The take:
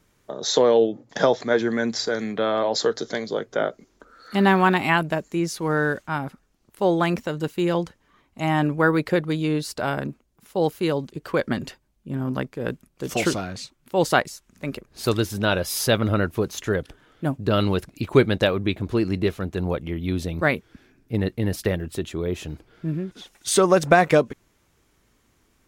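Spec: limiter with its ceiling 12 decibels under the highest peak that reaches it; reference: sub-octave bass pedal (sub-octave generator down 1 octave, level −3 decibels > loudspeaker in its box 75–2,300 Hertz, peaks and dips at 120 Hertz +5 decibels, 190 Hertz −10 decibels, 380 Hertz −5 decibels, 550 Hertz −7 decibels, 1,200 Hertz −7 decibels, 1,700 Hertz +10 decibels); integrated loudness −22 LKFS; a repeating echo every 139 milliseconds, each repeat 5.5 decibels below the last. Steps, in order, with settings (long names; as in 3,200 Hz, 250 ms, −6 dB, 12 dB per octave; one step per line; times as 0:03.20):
brickwall limiter −14.5 dBFS
repeating echo 139 ms, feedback 53%, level −5.5 dB
sub-octave generator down 1 octave, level −3 dB
loudspeaker in its box 75–2,300 Hz, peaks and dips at 120 Hz +5 dB, 190 Hz −10 dB, 380 Hz −5 dB, 550 Hz −7 dB, 1,200 Hz −7 dB, 1,700 Hz +10 dB
level +5 dB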